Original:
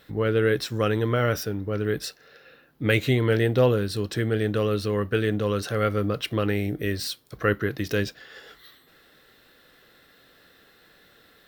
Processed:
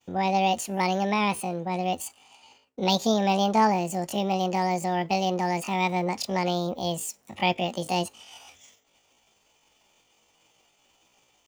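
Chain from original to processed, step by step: pitch shift +9.5 st; expander -51 dBFS; trim -1.5 dB

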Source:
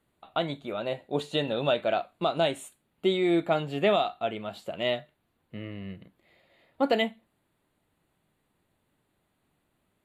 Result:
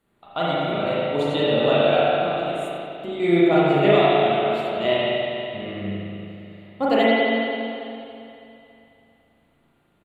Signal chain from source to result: 2.14–3.20 s: compression 6:1, threshold -35 dBFS, peak gain reduction 14 dB; on a send: feedback delay 92 ms, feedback 35%, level -12 dB; on the sum: spring tank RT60 2.8 s, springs 35/40 ms, chirp 50 ms, DRR -8.5 dB

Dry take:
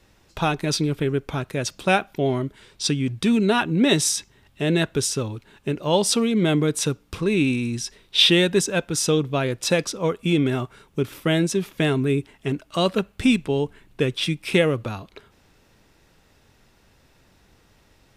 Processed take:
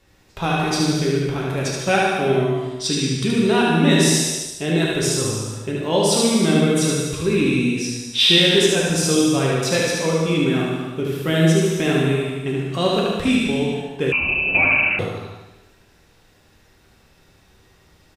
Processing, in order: on a send: feedback delay 74 ms, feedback 51%, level -3.5 dB; on the sum: gated-style reverb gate 480 ms falling, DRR -2 dB; 14.12–14.99 s: frequency inversion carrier 2.8 kHz; trim -2.5 dB

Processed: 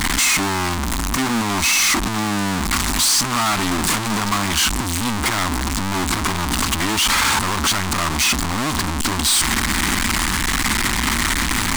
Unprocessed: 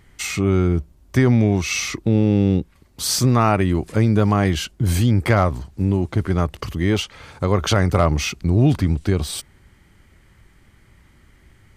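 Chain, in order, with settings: one-bit comparator; ten-band graphic EQ 125 Hz -9 dB, 250 Hz +10 dB, 500 Hz -12 dB, 1 kHz +10 dB, 2 kHz +3 dB, 4 kHz +4 dB, 8 kHz +7 dB; trim -2 dB

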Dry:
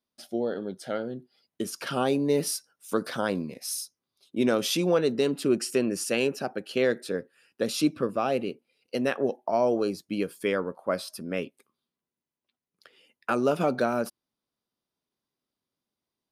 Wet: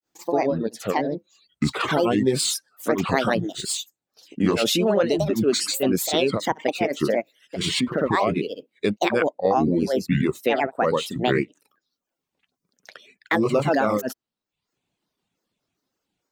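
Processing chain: in parallel at -2 dB: compressor with a negative ratio -29 dBFS, ratio -0.5; on the sum: granulator 204 ms, grains 13 per s, pitch spread up and down by 7 st; peaking EQ 11 kHz -6.5 dB 0.47 oct; reverb removal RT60 0.61 s; dynamic bell 5.7 kHz, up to -5 dB, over -48 dBFS, Q 2.5; trim +6 dB

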